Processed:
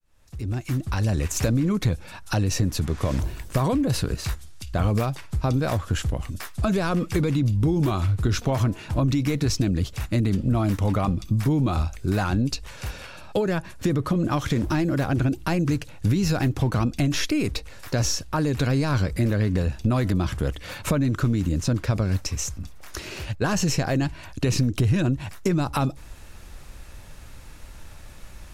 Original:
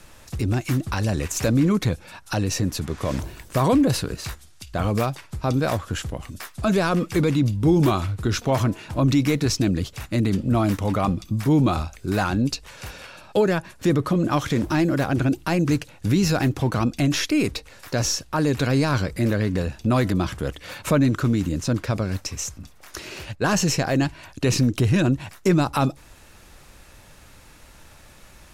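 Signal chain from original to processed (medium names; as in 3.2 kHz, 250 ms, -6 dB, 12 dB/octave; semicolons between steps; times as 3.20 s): fade-in on the opening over 1.45 s; compression, threshold -21 dBFS, peak gain reduction 7.5 dB; bass shelf 100 Hz +10.5 dB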